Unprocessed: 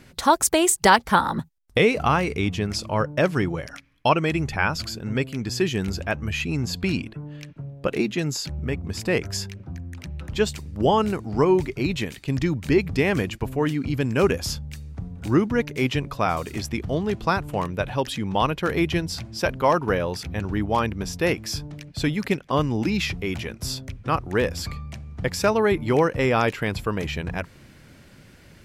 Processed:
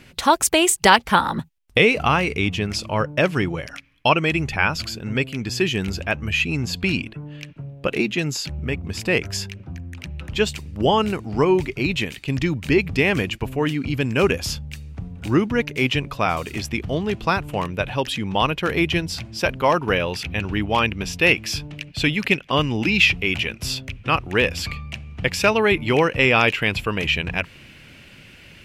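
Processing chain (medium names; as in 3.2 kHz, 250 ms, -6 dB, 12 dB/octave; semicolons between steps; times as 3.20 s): peaking EQ 2.7 kHz +7.5 dB 0.77 oct, from 19.91 s +14.5 dB; trim +1 dB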